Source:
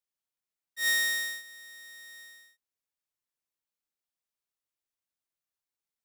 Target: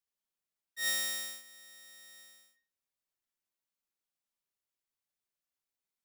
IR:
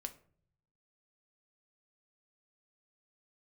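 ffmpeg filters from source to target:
-filter_complex "[1:a]atrim=start_sample=2205[a];[0:a][a]afir=irnorm=-1:irlink=0,volume=1.5dB"

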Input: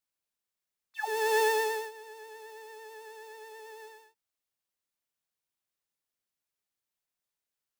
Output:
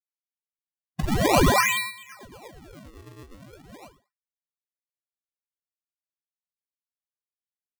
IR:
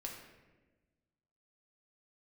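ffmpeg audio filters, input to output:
-af "lowpass=f=2.4k:t=q:w=0.5098,lowpass=f=2.4k:t=q:w=0.6013,lowpass=f=2.4k:t=q:w=0.9,lowpass=f=2.4k:t=q:w=2.563,afreqshift=-2800,acrusher=samples=33:mix=1:aa=0.000001:lfo=1:lforange=52.8:lforate=0.4,agate=range=-33dB:threshold=-41dB:ratio=3:detection=peak,volume=8dB"

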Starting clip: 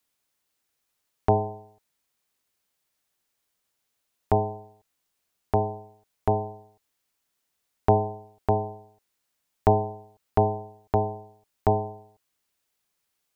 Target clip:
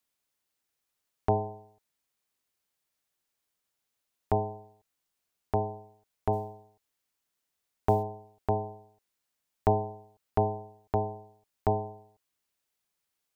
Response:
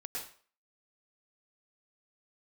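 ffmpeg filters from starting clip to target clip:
-filter_complex "[0:a]asplit=3[a][b][c];[a]afade=t=out:st=6.32:d=0.02[d];[b]acrusher=bits=9:mode=log:mix=0:aa=0.000001,afade=t=in:st=6.32:d=0.02,afade=t=out:st=8.02:d=0.02[e];[c]afade=t=in:st=8.02:d=0.02[f];[d][e][f]amix=inputs=3:normalize=0,volume=-5dB"

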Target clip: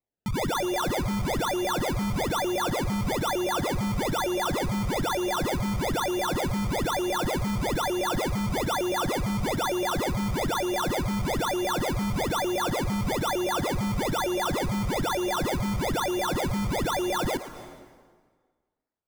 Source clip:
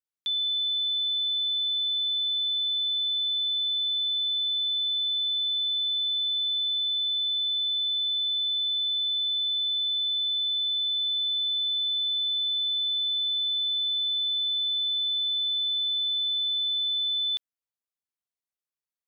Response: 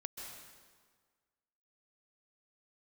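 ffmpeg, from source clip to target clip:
-filter_complex "[0:a]acrusher=samples=27:mix=1:aa=0.000001:lfo=1:lforange=27:lforate=1.1,asplit=2[a][b];[1:a]atrim=start_sample=2205,adelay=114[c];[b][c]afir=irnorm=-1:irlink=0,volume=-9dB[d];[a][d]amix=inputs=2:normalize=0"

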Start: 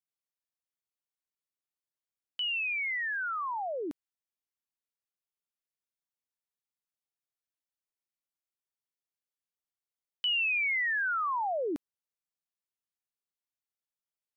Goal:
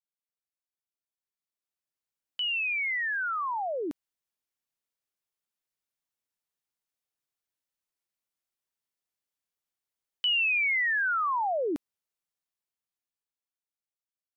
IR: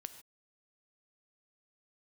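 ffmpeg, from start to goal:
-af "dynaudnorm=f=210:g=17:m=10dB,volume=-7dB"

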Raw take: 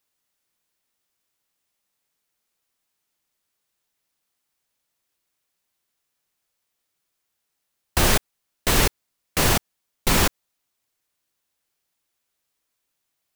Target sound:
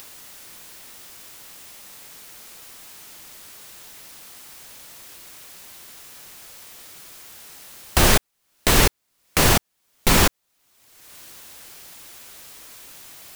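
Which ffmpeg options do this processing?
-af "acompressor=mode=upward:threshold=-21dB:ratio=2.5,volume=3dB"

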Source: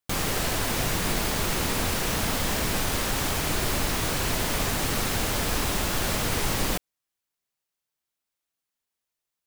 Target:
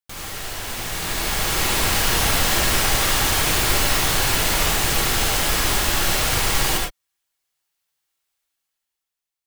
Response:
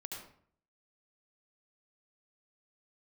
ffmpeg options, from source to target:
-filter_complex "[0:a]dynaudnorm=f=280:g=9:m=16.5dB,equalizer=f=220:w=0.36:g=-7.5[a];[1:a]atrim=start_sample=2205,afade=t=out:st=0.17:d=0.01,atrim=end_sample=7938[b];[a][b]afir=irnorm=-1:irlink=0"

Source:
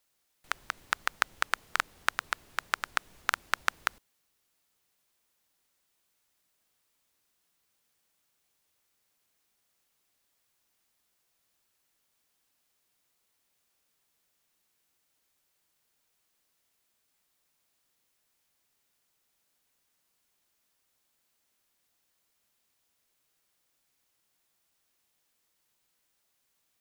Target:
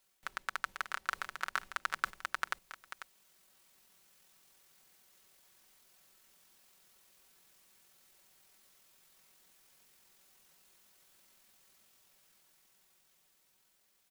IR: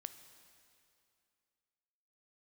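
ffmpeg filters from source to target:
-af "aecho=1:1:932|1864:0.266|0.0426,atempo=1.9,areverse,acompressor=threshold=-35dB:ratio=6,areverse,aecho=1:1:5.3:0.45,dynaudnorm=f=330:g=17:m=8dB,volume=2dB"

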